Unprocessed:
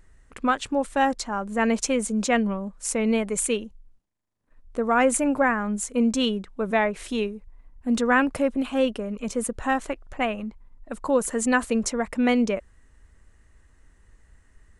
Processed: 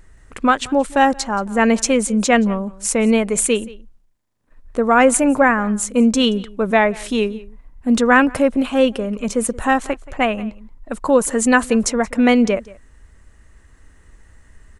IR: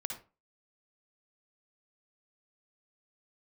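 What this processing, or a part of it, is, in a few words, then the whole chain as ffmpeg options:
ducked delay: -filter_complex "[0:a]asplit=3[link_01][link_02][link_03];[link_02]adelay=177,volume=-3.5dB[link_04];[link_03]apad=whole_len=660364[link_05];[link_04][link_05]sidechaincompress=threshold=-45dB:ratio=4:attack=50:release=794[link_06];[link_01][link_06]amix=inputs=2:normalize=0,volume=7.5dB"

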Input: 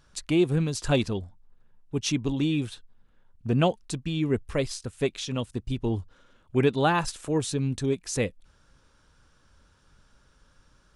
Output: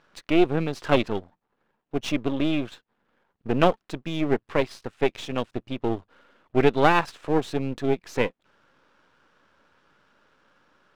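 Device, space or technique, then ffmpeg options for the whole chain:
crystal radio: -af "highpass=280,lowpass=2600,aeval=exprs='if(lt(val(0),0),0.251*val(0),val(0))':channel_layout=same,volume=8dB"

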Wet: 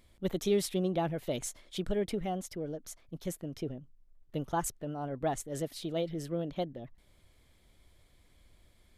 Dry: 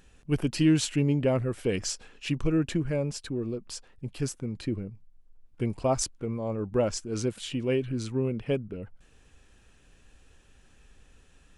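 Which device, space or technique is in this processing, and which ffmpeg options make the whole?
nightcore: -af "asetrate=56889,aresample=44100,volume=-6dB"

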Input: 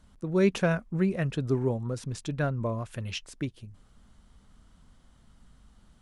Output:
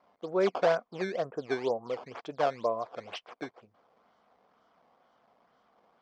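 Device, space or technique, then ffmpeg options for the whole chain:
circuit-bent sampling toy: -filter_complex "[0:a]asettb=1/sr,asplit=3[link_01][link_02][link_03];[link_01]atrim=end=0.984[link_04];[link_02]atrim=start=0.98:end=1.87,asetpts=PTS-STARTPTS,afade=type=in:duration=0.004:curve=qsin,afade=type=out:start_time=0.886:duration=0.004:curve=qsin,lowpass=frequency=1500:width=0.5412,lowpass=frequency=1500:width=1.3066[link_05];[link_03]atrim=start=1.866[link_06];[link_04][link_05]acrossfade=duration=0.004:curve1=hsin:curve2=qsin[link_07];[link_07][link_06]acrossfade=duration=0.004:curve1=qsin:curve2=hsin,acrusher=samples=13:mix=1:aa=0.000001:lfo=1:lforange=20.8:lforate=2.1,highpass=450,equalizer=frequency=480:width_type=q:width=4:gain=6,equalizer=frequency=710:width_type=q:width=4:gain=9,equalizer=frequency=1100:width_type=q:width=4:gain=4,equalizer=frequency=1800:width_type=q:width=4:gain=-4,equalizer=frequency=2700:width_type=q:width=4:gain=-6,equalizer=frequency=3900:width_type=q:width=4:gain=-7,lowpass=frequency=4500:width=0.5412,lowpass=frequency=4500:width=1.3066"

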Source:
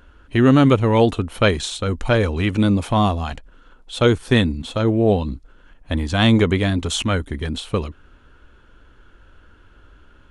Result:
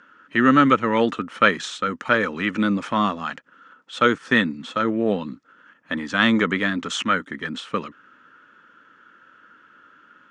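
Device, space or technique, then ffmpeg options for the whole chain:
television speaker: -af "highpass=frequency=180:width=0.5412,highpass=frequency=180:width=1.3066,equalizer=frequency=390:width_type=q:width=4:gain=-6,equalizer=frequency=730:width_type=q:width=4:gain=-8,equalizer=frequency=1300:width_type=q:width=4:gain=10,equalizer=frequency=1800:width_type=q:width=4:gain=8,equalizer=frequency=4100:width_type=q:width=4:gain=-5,lowpass=frequency=6900:width=0.5412,lowpass=frequency=6900:width=1.3066,volume=-2dB"

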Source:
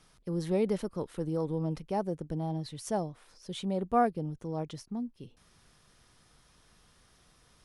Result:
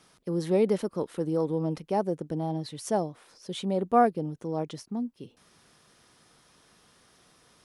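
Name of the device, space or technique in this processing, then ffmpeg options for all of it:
filter by subtraction: -filter_complex "[0:a]asplit=2[link_01][link_02];[link_02]lowpass=310,volume=-1[link_03];[link_01][link_03]amix=inputs=2:normalize=0,volume=3.5dB"

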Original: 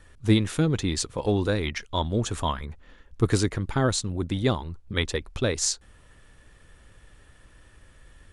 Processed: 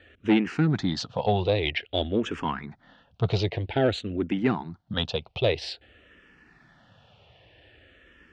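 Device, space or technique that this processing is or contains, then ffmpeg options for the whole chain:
barber-pole phaser into a guitar amplifier: -filter_complex "[0:a]asplit=2[link_01][link_02];[link_02]afreqshift=-0.51[link_03];[link_01][link_03]amix=inputs=2:normalize=1,asoftclip=type=tanh:threshold=-17.5dB,highpass=110,equalizer=frequency=710:width_type=q:width=4:gain=7,equalizer=frequency=1100:width_type=q:width=4:gain=-6,equalizer=frequency=2800:width_type=q:width=4:gain=6,lowpass=frequency=4300:width=0.5412,lowpass=frequency=4300:width=1.3066,volume=4.5dB"

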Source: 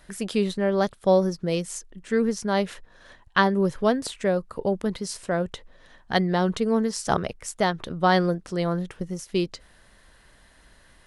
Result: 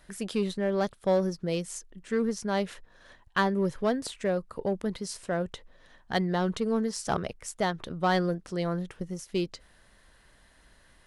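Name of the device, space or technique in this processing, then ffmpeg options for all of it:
parallel distortion: -filter_complex "[0:a]asplit=2[link_01][link_02];[link_02]asoftclip=type=hard:threshold=-19dB,volume=-4dB[link_03];[link_01][link_03]amix=inputs=2:normalize=0,volume=-8.5dB"

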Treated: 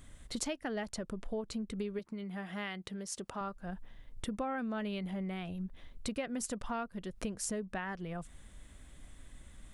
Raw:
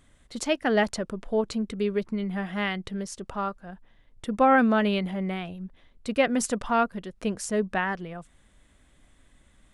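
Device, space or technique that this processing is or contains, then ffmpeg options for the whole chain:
ASMR close-microphone chain: -filter_complex "[0:a]lowshelf=frequency=150:gain=7,acompressor=threshold=-37dB:ratio=6,highshelf=frequency=6300:gain=6.5,asettb=1/sr,asplit=3[link_01][link_02][link_03];[link_01]atrim=end=1.994[link_04];[link_02]atrim=start=1.99:end=3.41,asetpts=PTS-STARTPTS,afade=type=in:duration=0.004:curve=qsin,afade=type=out:start_time=1.416:duration=0.004:curve=qsin,highpass=frequency=250:poles=1[link_05];[link_03]atrim=start=3.406[link_06];[link_04][link_05]acrossfade=duration=0.004:curve1=hsin:curve2=qsin[link_07];[link_07][link_06]acrossfade=duration=0.004:curve1=qsin:curve2=hsin,volume=1dB"

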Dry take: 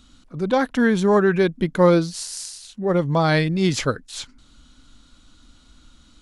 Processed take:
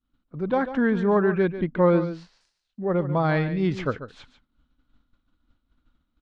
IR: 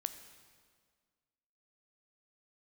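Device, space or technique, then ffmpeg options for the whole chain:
hearing-loss simulation: -filter_complex "[0:a]lowpass=2100,agate=range=-33dB:threshold=-40dB:ratio=3:detection=peak,asettb=1/sr,asplit=3[link_01][link_02][link_03];[link_01]atrim=end=1.544[link_04];[link_02]atrim=start=1.54:end=2.41,asetpts=PTS-STARTPTS,afade=type=in:duration=0.004:curve=qsin,afade=type=out:start_time=0.866:duration=0.004:curve=qsin,lowpass=5100[link_05];[link_03]atrim=start=2.406[link_06];[link_04][link_05]acrossfade=duration=0.004:curve1=hsin:curve2=qsin[link_07];[link_07][link_06]acrossfade=duration=0.004:curve1=qsin:curve2=hsin,aecho=1:1:143:0.251,volume=-4dB"

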